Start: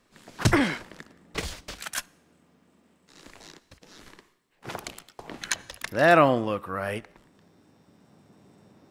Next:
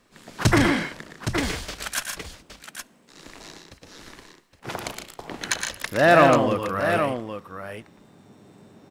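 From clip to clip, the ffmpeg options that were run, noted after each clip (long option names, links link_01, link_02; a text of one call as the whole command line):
ffmpeg -i in.wav -filter_complex "[0:a]aecho=1:1:99|117|152|816:0.119|0.501|0.335|0.335,asplit=2[link_01][link_02];[link_02]asoftclip=type=tanh:threshold=-21.5dB,volume=-4.5dB[link_03];[link_01][link_03]amix=inputs=2:normalize=0" out.wav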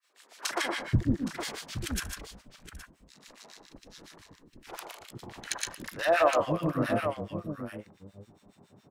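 ffmpeg -i in.wav -filter_complex "[0:a]acrossover=split=400|1700[link_01][link_02][link_03];[link_02]adelay=40[link_04];[link_01]adelay=480[link_05];[link_05][link_04][link_03]amix=inputs=3:normalize=0,acrossover=split=1200[link_06][link_07];[link_06]aeval=exprs='val(0)*(1-1/2+1/2*cos(2*PI*7.2*n/s))':channel_layout=same[link_08];[link_07]aeval=exprs='val(0)*(1-1/2-1/2*cos(2*PI*7.2*n/s))':channel_layout=same[link_09];[link_08][link_09]amix=inputs=2:normalize=0,volume=-1.5dB" out.wav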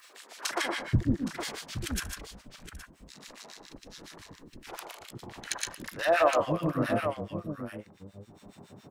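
ffmpeg -i in.wav -af "acompressor=mode=upward:threshold=-41dB:ratio=2.5" out.wav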